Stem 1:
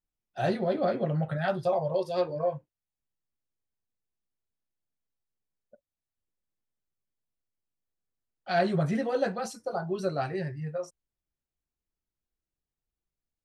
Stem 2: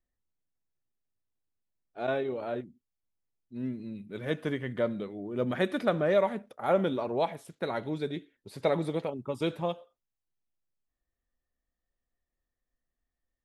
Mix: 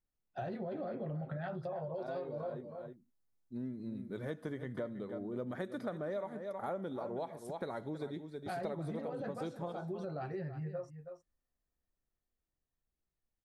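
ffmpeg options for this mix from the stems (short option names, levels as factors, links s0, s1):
-filter_complex "[0:a]lowpass=f=1400:p=1,alimiter=level_in=1.06:limit=0.0631:level=0:latency=1:release=16,volume=0.944,volume=1,asplit=2[s0][s1];[s1]volume=0.188[s2];[1:a]equalizer=f=2700:t=o:w=0.57:g=-14.5,dynaudnorm=f=330:g=17:m=4.47,volume=0.335,asplit=2[s3][s4];[s4]volume=0.237[s5];[s2][s5]amix=inputs=2:normalize=0,aecho=0:1:320:1[s6];[s0][s3][s6]amix=inputs=3:normalize=0,acompressor=threshold=0.0126:ratio=5"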